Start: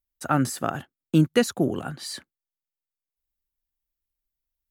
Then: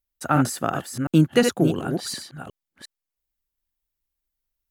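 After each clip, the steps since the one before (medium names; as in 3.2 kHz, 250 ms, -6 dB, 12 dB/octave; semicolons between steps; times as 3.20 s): chunks repeated in reverse 357 ms, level -5.5 dB; trim +2 dB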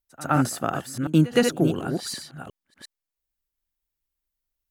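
reverse echo 114 ms -19.5 dB; trim -1.5 dB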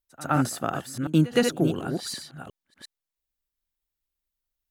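peaking EQ 3.7 kHz +2.5 dB 0.39 oct; trim -2 dB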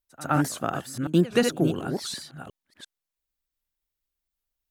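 warped record 78 rpm, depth 250 cents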